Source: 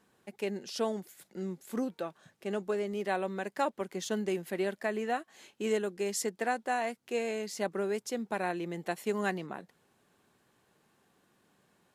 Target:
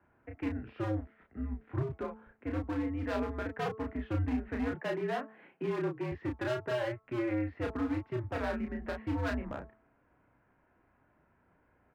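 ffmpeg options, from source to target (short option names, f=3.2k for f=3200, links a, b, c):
-filter_complex "[0:a]highpass=f=160:t=q:w=0.5412,highpass=f=160:t=q:w=1.307,lowpass=f=2.3k:t=q:w=0.5176,lowpass=f=2.3k:t=q:w=0.7071,lowpass=f=2.3k:t=q:w=1.932,afreqshift=-120,acrossover=split=110[a][b];[b]volume=31.5dB,asoftclip=hard,volume=-31.5dB[c];[a][c]amix=inputs=2:normalize=0,asettb=1/sr,asplit=3[d][e][f];[d]atrim=end=4.714[g];[e]atrim=start=4.71:end=6.12,asetpts=PTS-STARTPTS,afade=t=in:d=0.004:c=qsin,afade=t=out:st=1.406:d=0.004:c=qsin,afreqshift=77[h];[f]atrim=start=6.116[i];[g][h]acrossfade=d=0.004:c1=hsin:c2=qsin[j];[j][i]acrossfade=d=0.004:c1=qsin:c2=hsin,asplit=2[k][l];[l]adelay=32,volume=-3.5dB[m];[k][m]amix=inputs=2:normalize=0,bandreject=f=219.6:t=h:w=4,bandreject=f=439.2:t=h:w=4,bandreject=f=658.8:t=h:w=4,bandreject=f=878.4:t=h:w=4,bandreject=f=1.098k:t=h:w=4,bandreject=f=1.3176k:t=h:w=4"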